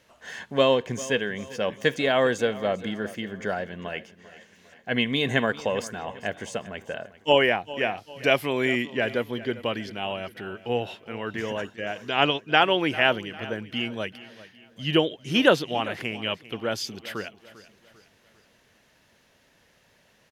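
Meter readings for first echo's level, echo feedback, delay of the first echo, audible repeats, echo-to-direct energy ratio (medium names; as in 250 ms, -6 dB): -17.5 dB, 44%, 397 ms, 3, -16.5 dB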